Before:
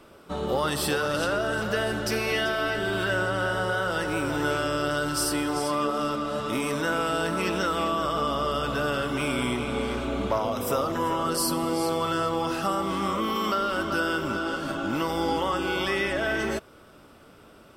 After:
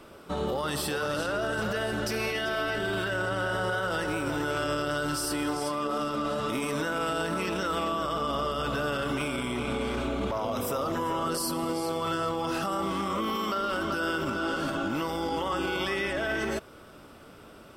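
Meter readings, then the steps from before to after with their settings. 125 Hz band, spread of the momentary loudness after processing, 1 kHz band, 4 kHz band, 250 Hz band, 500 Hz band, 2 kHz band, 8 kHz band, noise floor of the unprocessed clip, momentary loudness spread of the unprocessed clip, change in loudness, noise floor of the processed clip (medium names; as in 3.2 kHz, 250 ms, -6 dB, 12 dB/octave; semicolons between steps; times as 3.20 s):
-2.5 dB, 2 LU, -3.0 dB, -3.0 dB, -2.5 dB, -3.0 dB, -3.0 dB, -4.0 dB, -52 dBFS, 3 LU, -3.0 dB, -50 dBFS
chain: peak limiter -23.5 dBFS, peak gain reduction 10.5 dB; trim +2 dB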